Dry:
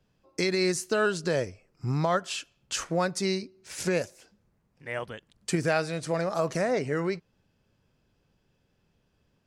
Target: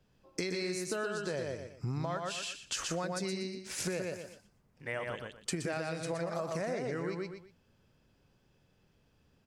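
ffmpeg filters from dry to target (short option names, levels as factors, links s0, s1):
-af "aecho=1:1:120|240|360:0.631|0.145|0.0334,acompressor=threshold=0.0224:ratio=6"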